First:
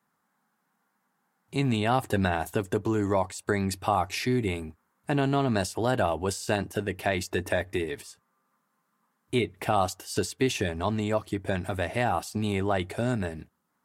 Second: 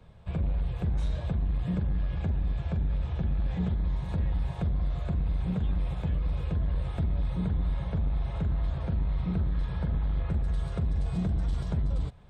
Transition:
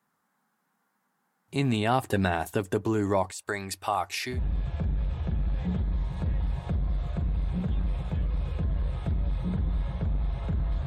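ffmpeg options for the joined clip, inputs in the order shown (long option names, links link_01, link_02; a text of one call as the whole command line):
ffmpeg -i cue0.wav -i cue1.wav -filter_complex "[0:a]asettb=1/sr,asplit=3[link_01][link_02][link_03];[link_01]atrim=end=3.314[link_04];[link_02]atrim=start=3.31:end=4.4,asetpts=PTS-STARTPTS,afade=type=in:duration=0.004:curve=qsin,afade=type=out:start_time=1.086:duration=0.004:curve=qsin,equalizer=frequency=160:width_type=o:width=2.8:gain=-12[link_05];[link_03]atrim=start=4.396[link_06];[link_04][link_05]acrossfade=duration=0.004:curve1=hsin:curve2=qsin[link_07];[link_07][link_06]acrossfade=duration=0.004:curve1=qsin:curve2=hsin,apad=whole_dur=10.86,atrim=end=10.86,atrim=end=4.4,asetpts=PTS-STARTPTS[link_08];[1:a]atrim=start=2.22:end=8.78,asetpts=PTS-STARTPTS[link_09];[link_08][link_09]acrossfade=duration=0.1:curve1=tri:curve2=tri" out.wav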